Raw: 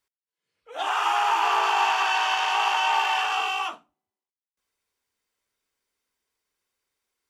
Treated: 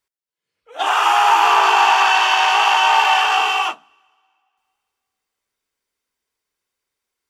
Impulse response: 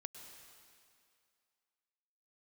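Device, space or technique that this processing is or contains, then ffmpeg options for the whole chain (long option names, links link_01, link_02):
keyed gated reverb: -filter_complex "[0:a]asettb=1/sr,asplit=3[link_01][link_02][link_03];[link_01]atrim=end=0.864[link_04];[link_02]atrim=start=0.86:end=1.52,asetpts=PTS-STARTPTS,afade=type=in:duration=0.004:curve=qsin,afade=type=out:start_time=0.656:duration=0.004:curve=qsin,highshelf=frequency=11000:gain=5[link_05];[link_03]atrim=start=1.516[link_06];[link_04][link_05]acrossfade=duration=0.004:curve1=hsin:curve2=qsin[link_07];[link_07][link_06]acrossfade=duration=0.004:curve1=qsin:curve2=hsin,asplit=3[link_08][link_09][link_10];[1:a]atrim=start_sample=2205[link_11];[link_09][link_11]afir=irnorm=-1:irlink=0[link_12];[link_10]apad=whole_len=321614[link_13];[link_12][link_13]sidechaingate=range=-25dB:threshold=-30dB:ratio=16:detection=peak,volume=9.5dB[link_14];[link_08][link_14]amix=inputs=2:normalize=0"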